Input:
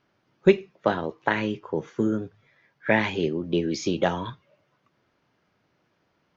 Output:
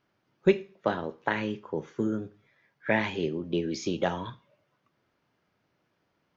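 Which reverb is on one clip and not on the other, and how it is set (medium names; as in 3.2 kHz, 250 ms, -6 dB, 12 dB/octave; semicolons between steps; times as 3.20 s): Schroeder reverb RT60 0.41 s, combs from 26 ms, DRR 17 dB; trim -4.5 dB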